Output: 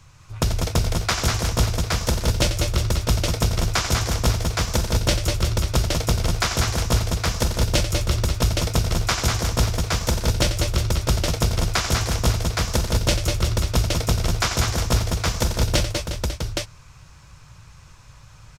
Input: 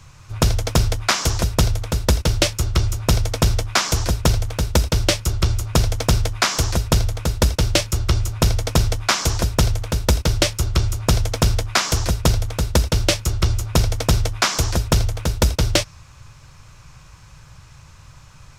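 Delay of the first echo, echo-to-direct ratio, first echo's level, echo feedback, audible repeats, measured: 90 ms, 0.0 dB, −10.0 dB, repeats not evenly spaced, 5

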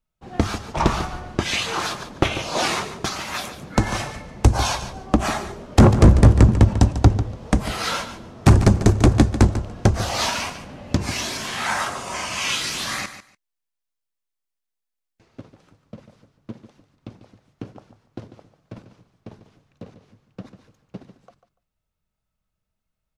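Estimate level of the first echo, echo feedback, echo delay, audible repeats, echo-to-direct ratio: −12.0 dB, 17%, 145 ms, 2, −12.0 dB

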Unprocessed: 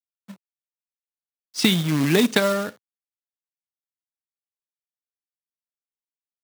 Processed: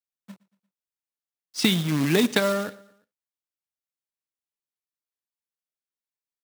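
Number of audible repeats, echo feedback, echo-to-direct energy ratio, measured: 3, 52%, −21.5 dB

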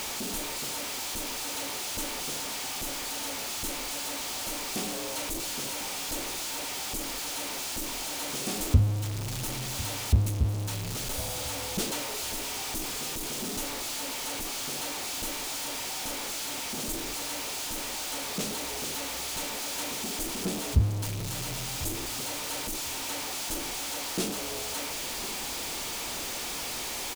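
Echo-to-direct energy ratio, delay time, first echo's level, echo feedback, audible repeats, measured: −18.0 dB, 1,049 ms, −18.0 dB, 20%, 2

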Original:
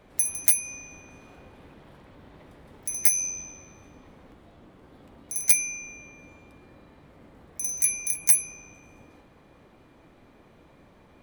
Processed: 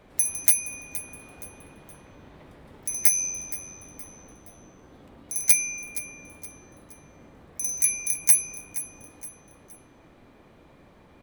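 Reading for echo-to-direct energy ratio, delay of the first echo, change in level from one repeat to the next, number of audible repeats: −14.5 dB, 470 ms, −8.5 dB, 3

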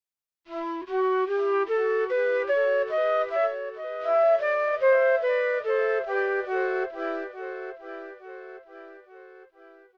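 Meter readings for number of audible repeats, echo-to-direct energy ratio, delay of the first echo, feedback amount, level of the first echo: 4, −9.0 dB, 865 ms, 48%, −10.0 dB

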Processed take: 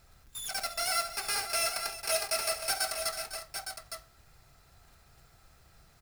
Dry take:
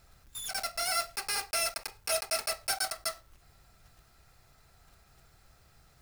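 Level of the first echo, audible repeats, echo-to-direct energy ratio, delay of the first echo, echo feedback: −12.0 dB, 4, −5.0 dB, 69 ms, repeats not evenly spaced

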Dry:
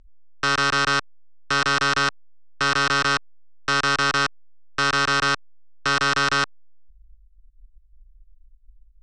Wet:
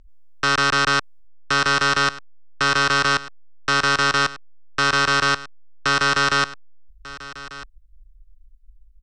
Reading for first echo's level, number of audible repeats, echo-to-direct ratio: −17.5 dB, 1, −17.5 dB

